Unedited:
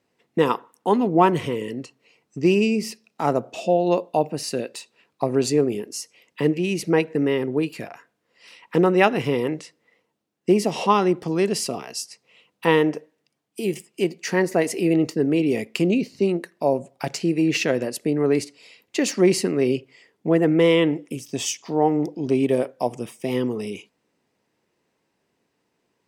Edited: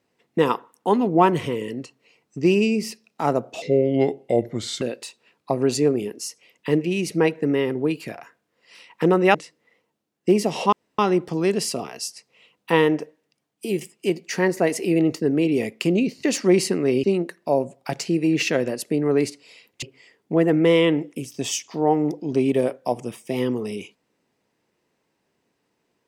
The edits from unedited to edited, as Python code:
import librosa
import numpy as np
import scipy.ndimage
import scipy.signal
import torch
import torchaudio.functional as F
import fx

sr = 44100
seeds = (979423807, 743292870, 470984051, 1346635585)

y = fx.edit(x, sr, fx.speed_span(start_s=3.62, length_s=0.92, speed=0.77),
    fx.cut(start_s=9.07, length_s=0.48),
    fx.insert_room_tone(at_s=10.93, length_s=0.26),
    fx.move(start_s=18.97, length_s=0.8, to_s=16.18), tone=tone)